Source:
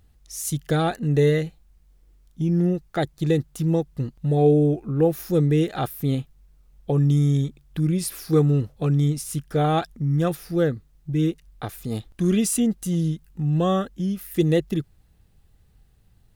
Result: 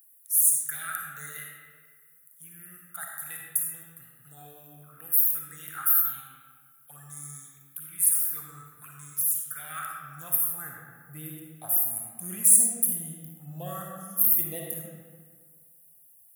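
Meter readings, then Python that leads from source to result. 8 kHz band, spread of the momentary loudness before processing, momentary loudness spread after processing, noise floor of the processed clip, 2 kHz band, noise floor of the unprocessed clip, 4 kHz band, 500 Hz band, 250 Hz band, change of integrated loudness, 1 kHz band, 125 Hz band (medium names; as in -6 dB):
+10.0 dB, 10 LU, 21 LU, -57 dBFS, -4.0 dB, -58 dBFS, under -10 dB, -25.0 dB, -24.0 dB, -0.5 dB, -11.5 dB, -25.0 dB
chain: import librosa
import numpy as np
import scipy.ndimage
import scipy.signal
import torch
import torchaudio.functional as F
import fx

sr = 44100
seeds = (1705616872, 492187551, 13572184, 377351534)

y = fx.curve_eq(x, sr, hz=(140.0, 420.0, 1700.0, 3400.0, 4900.0, 11000.0), db=(0, -28, -15, -21, -25, 15))
y = fx.env_phaser(y, sr, low_hz=200.0, high_hz=2900.0, full_db=-19.0)
y = fx.filter_sweep_highpass(y, sr, from_hz=1400.0, to_hz=640.0, start_s=9.56, end_s=11.08, q=3.5)
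y = fx.rev_freeverb(y, sr, rt60_s=1.7, hf_ratio=0.65, predelay_ms=15, drr_db=-1.0)
y = F.gain(torch.from_numpy(y), 6.0).numpy()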